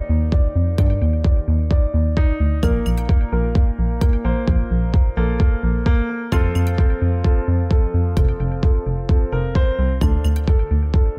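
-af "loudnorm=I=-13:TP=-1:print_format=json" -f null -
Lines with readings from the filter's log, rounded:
"input_i" : "-18.9",
"input_tp" : "-5.6",
"input_lra" : "0.4",
"input_thresh" : "-28.9",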